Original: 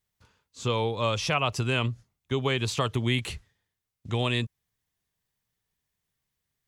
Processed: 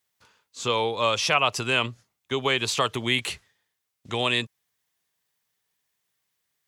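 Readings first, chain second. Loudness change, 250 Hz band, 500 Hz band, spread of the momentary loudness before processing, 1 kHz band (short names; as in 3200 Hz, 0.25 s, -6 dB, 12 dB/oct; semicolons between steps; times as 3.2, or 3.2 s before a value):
+3.5 dB, -1.5 dB, +2.5 dB, 9 LU, +5.0 dB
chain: HPF 540 Hz 6 dB/oct; gain +6 dB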